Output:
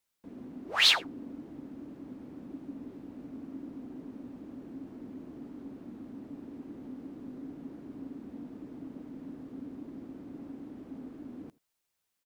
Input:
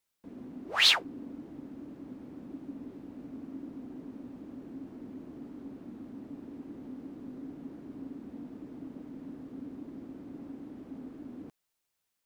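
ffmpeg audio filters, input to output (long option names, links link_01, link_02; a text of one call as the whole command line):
ffmpeg -i in.wav -af "aecho=1:1:84:0.0708" out.wav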